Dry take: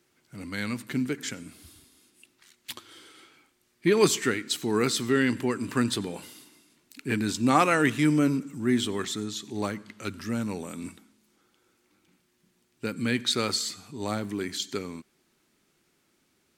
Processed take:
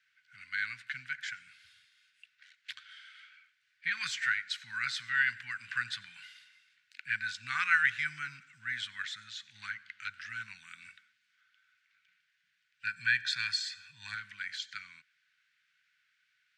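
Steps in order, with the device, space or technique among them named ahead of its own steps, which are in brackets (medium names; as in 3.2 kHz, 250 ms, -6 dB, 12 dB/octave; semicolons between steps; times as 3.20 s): treble shelf 6.1 kHz -5 dB; 12.85–14.15 s: comb 1.2 ms, depth 93%; dynamic bell 2.9 kHz, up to -5 dB, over -45 dBFS, Q 2.2; elliptic band-stop 120–1800 Hz, stop band 70 dB; tin-can telephone (band-pass 460–3200 Hz; small resonant body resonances 1.5 kHz, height 13 dB, ringing for 30 ms); trim +3 dB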